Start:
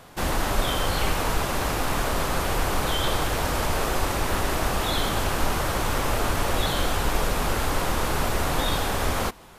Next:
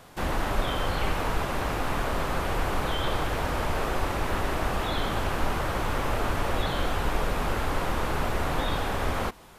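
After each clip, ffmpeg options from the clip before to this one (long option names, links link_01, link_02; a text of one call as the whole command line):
ffmpeg -i in.wav -filter_complex "[0:a]acrossover=split=3400[link_01][link_02];[link_02]acompressor=threshold=-42dB:ratio=4:attack=1:release=60[link_03];[link_01][link_03]amix=inputs=2:normalize=0,volume=-2.5dB" out.wav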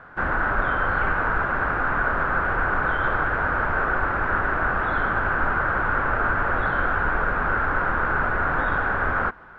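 ffmpeg -i in.wav -af "lowpass=frequency=1500:width_type=q:width=6.6" out.wav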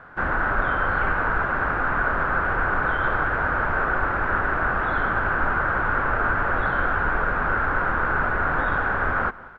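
ffmpeg -i in.wav -filter_complex "[0:a]asplit=2[link_01][link_02];[link_02]adelay=186.6,volume=-20dB,highshelf=frequency=4000:gain=-4.2[link_03];[link_01][link_03]amix=inputs=2:normalize=0" out.wav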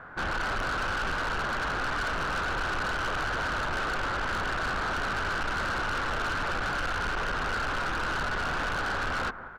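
ffmpeg -i in.wav -af "asoftclip=type=tanh:threshold=-27.5dB" out.wav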